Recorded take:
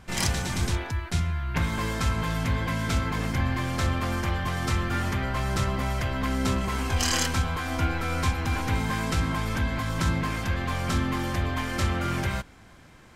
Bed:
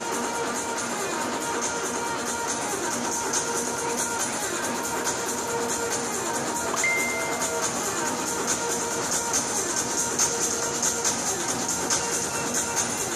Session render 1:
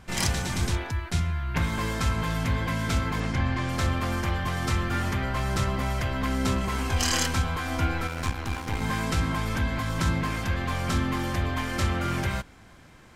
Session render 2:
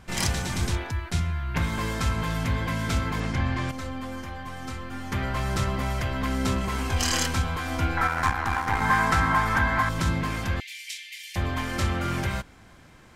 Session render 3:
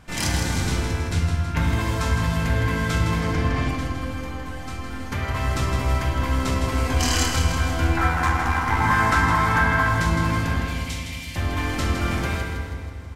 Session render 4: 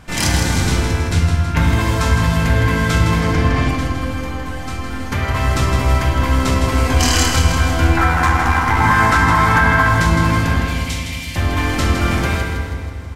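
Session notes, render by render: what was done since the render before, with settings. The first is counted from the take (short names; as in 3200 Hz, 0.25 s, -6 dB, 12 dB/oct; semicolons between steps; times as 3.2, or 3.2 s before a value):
3.2–3.69 LPF 7200 Hz; 8.07–8.82 half-wave gain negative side -12 dB
3.71–5.12 resonator 260 Hz, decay 0.19 s, mix 80%; 7.97–9.89 band shelf 1200 Hz +11 dB; 10.6–11.36 steep high-pass 2000 Hz 72 dB/oct
feedback echo 0.161 s, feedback 54%, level -7 dB; FDN reverb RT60 2.4 s, low-frequency decay 1.55×, high-frequency decay 0.5×, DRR 1 dB
gain +7 dB; limiter -3 dBFS, peak gain reduction 3 dB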